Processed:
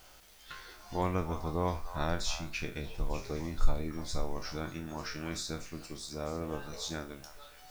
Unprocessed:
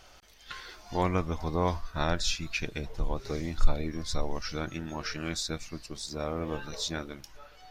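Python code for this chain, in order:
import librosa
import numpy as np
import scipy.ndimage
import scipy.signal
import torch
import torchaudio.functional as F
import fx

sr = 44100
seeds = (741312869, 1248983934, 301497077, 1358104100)

p1 = fx.spec_trails(x, sr, decay_s=0.31)
p2 = fx.quant_dither(p1, sr, seeds[0], bits=8, dither='triangular')
p3 = p1 + (p2 * librosa.db_to_amplitude(-6.5))
p4 = fx.dynamic_eq(p3, sr, hz=3200.0, q=0.74, threshold_db=-45.0, ratio=4.0, max_db=-4)
p5 = fx.echo_stepped(p4, sr, ms=299, hz=930.0, octaves=1.4, feedback_pct=70, wet_db=-9)
y = p5 * librosa.db_to_amplitude(-7.5)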